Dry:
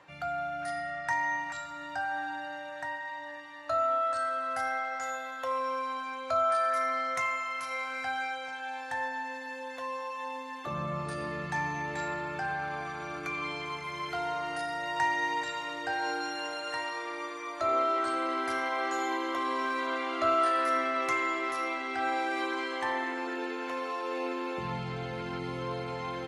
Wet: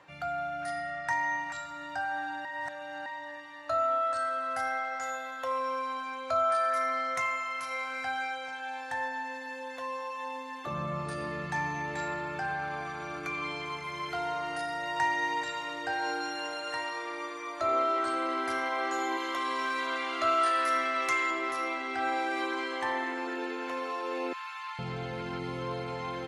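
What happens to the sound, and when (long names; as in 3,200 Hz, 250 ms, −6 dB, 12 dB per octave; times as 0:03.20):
0:02.45–0:03.06: reverse
0:19.17–0:21.31: tilt shelving filter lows −4.5 dB, about 1,200 Hz
0:24.33–0:24.79: Butterworth high-pass 940 Hz 48 dB per octave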